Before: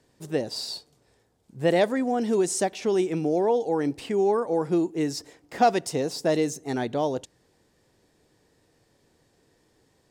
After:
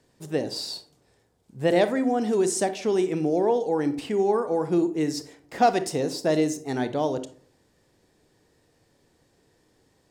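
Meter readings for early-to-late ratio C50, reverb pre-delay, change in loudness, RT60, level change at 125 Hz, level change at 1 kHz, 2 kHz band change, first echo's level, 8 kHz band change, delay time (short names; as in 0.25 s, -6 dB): 13.0 dB, 29 ms, +0.5 dB, 0.50 s, +0.5 dB, +0.5 dB, +0.5 dB, none, 0.0 dB, none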